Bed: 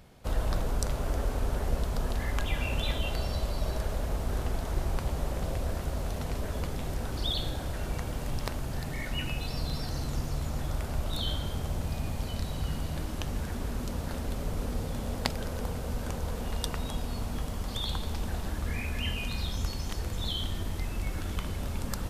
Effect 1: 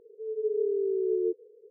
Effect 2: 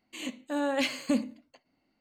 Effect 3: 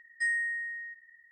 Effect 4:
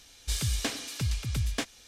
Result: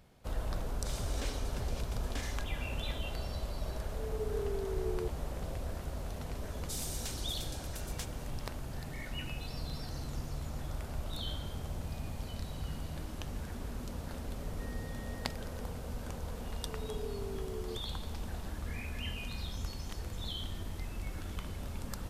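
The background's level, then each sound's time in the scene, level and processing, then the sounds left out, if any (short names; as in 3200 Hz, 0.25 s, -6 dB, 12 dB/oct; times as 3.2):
bed -7 dB
0.57 add 4 -13 dB + sustainer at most 63 dB/s
3.76 add 1 -7 dB + low shelf 310 Hz -8.5 dB
6.41 add 4 -5 dB + differentiator
14.4 add 3 -12 dB + delta modulation 32 kbps, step -52 dBFS
16.45 add 1 -10.5 dB + HPF 470 Hz
not used: 2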